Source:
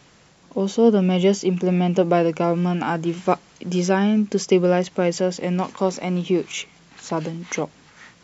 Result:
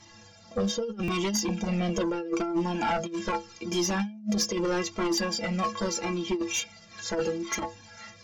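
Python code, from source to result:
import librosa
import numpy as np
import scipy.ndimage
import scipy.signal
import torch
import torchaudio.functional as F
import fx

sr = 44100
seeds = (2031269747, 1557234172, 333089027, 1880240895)

y = fx.peak_eq(x, sr, hz=5200.0, db=6.5, octaves=0.4)
y = fx.stiff_resonator(y, sr, f0_hz=100.0, decay_s=0.35, stiffness=0.03)
y = fx.over_compress(y, sr, threshold_db=-31.0, ratio=-0.5)
y = fx.fold_sine(y, sr, drive_db=8, ceiling_db=-17.5)
y = fx.buffer_glitch(y, sr, at_s=(1.03,), block=256, repeats=8)
y = fx.comb_cascade(y, sr, direction='falling', hz=0.79)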